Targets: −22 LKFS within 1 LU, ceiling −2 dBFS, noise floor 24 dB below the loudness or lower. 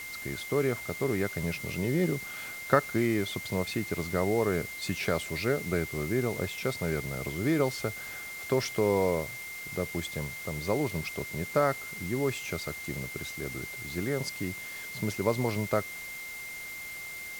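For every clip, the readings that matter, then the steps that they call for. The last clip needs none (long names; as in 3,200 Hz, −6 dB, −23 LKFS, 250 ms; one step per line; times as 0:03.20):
interfering tone 2,100 Hz; level of the tone −39 dBFS; background noise floor −41 dBFS; target noise floor −55 dBFS; integrated loudness −31.0 LKFS; sample peak −7.5 dBFS; target loudness −22.0 LKFS
→ notch filter 2,100 Hz, Q 30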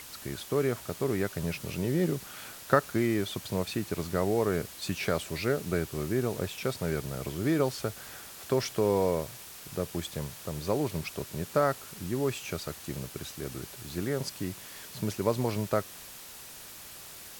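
interfering tone none found; background noise floor −46 dBFS; target noise floor −56 dBFS
→ broadband denoise 10 dB, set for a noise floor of −46 dBFS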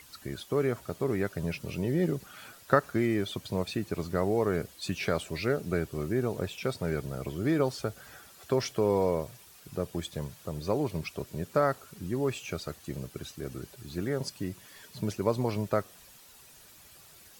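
background noise floor −54 dBFS; target noise floor −56 dBFS
→ broadband denoise 6 dB, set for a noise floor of −54 dBFS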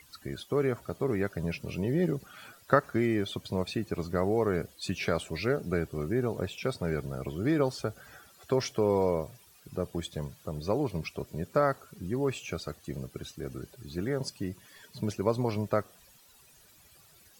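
background noise floor −59 dBFS; integrated loudness −31.5 LKFS; sample peak −7.5 dBFS; target loudness −22.0 LKFS
→ level +9.5 dB
brickwall limiter −2 dBFS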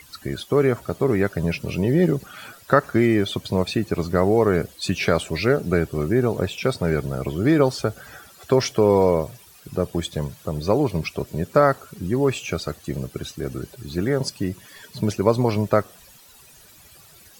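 integrated loudness −22.5 LKFS; sample peak −2.0 dBFS; background noise floor −49 dBFS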